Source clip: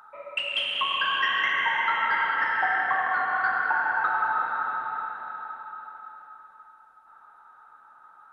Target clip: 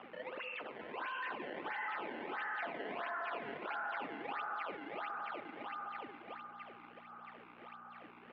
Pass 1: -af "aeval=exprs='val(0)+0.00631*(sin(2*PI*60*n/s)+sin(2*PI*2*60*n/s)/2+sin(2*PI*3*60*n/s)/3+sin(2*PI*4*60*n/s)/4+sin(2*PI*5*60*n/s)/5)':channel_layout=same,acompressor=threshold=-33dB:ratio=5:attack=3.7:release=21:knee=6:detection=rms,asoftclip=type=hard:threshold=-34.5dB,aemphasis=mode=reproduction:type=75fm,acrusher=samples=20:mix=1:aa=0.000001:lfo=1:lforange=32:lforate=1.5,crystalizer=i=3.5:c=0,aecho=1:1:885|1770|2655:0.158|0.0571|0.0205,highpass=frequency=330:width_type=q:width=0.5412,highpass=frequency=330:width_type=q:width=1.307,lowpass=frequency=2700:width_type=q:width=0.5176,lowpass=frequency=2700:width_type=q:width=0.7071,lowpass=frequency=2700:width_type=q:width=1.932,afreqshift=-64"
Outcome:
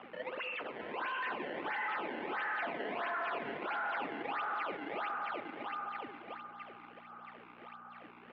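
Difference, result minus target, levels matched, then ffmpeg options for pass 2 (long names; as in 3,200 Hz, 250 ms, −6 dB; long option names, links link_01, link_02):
downward compressor: peak gain reduction −7 dB
-af "aeval=exprs='val(0)+0.00631*(sin(2*PI*60*n/s)+sin(2*PI*2*60*n/s)/2+sin(2*PI*3*60*n/s)/3+sin(2*PI*4*60*n/s)/4+sin(2*PI*5*60*n/s)/5)':channel_layout=same,acompressor=threshold=-41.5dB:ratio=5:attack=3.7:release=21:knee=6:detection=rms,asoftclip=type=hard:threshold=-34.5dB,aemphasis=mode=reproduction:type=75fm,acrusher=samples=20:mix=1:aa=0.000001:lfo=1:lforange=32:lforate=1.5,crystalizer=i=3.5:c=0,aecho=1:1:885|1770|2655:0.158|0.0571|0.0205,highpass=frequency=330:width_type=q:width=0.5412,highpass=frequency=330:width_type=q:width=1.307,lowpass=frequency=2700:width_type=q:width=0.5176,lowpass=frequency=2700:width_type=q:width=0.7071,lowpass=frequency=2700:width_type=q:width=1.932,afreqshift=-64"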